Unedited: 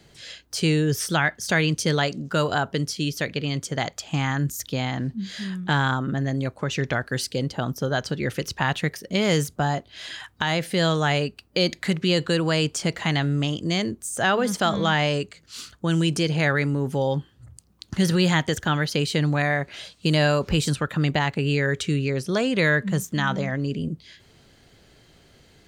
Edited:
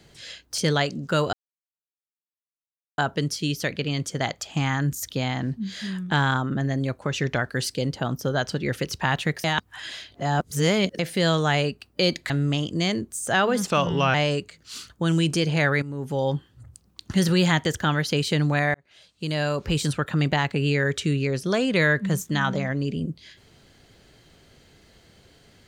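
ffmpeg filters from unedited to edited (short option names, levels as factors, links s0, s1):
-filter_complex "[0:a]asplit=10[s0][s1][s2][s3][s4][s5][s6][s7][s8][s9];[s0]atrim=end=0.582[s10];[s1]atrim=start=1.798:end=2.55,asetpts=PTS-STARTPTS,afade=t=out:st=0.748:d=0.004:c=hsin,apad=pad_dur=1.65[s11];[s2]atrim=start=2.55:end=9.012,asetpts=PTS-STARTPTS,afade=t=in:d=0.004:c=hsin[s12];[s3]atrim=start=9.008:end=10.562,asetpts=PTS-STARTPTS,areverse[s13];[s4]atrim=start=10.558:end=11.872[s14];[s5]atrim=start=13.198:end=14.564[s15];[s6]atrim=start=14.56:end=14.97,asetpts=PTS-STARTPTS,asetrate=37485,aresample=44100[s16];[s7]atrim=start=14.966:end=16.65,asetpts=PTS-STARTPTS,afade=t=out:st=1.68:d=0.004:c=hsin:silence=0.211349[s17];[s8]atrim=start=16.65:end=19.57,asetpts=PTS-STARTPTS,afade=t=in:d=0.47:silence=0.211349,afade=t=out:st=2.916:d=0.004:c=hsin[s18];[s9]atrim=start=19.57,asetpts=PTS-STARTPTS,afade=t=in:d=1.27[s19];[s11][s12]concat=n=2:v=0:a=1[s20];[s10][s20]acrossfade=d=0.004:c1=hsin:c2=hsin[s21];[s21][s13]acrossfade=d=0.004:c1=hsin:c2=hsin[s22];[s22][s14]acrossfade=d=0.004:c1=hsin:c2=hsin[s23];[s23][s15]acrossfade=d=0.004:c1=hsin:c2=hsin[s24];[s24][s16]acrossfade=d=0.004:c1=hsin:c2=hsin[s25];[s17][s18][s19]concat=n=3:v=0:a=1[s26];[s25][s26]acrossfade=d=0.004:c1=hsin:c2=hsin"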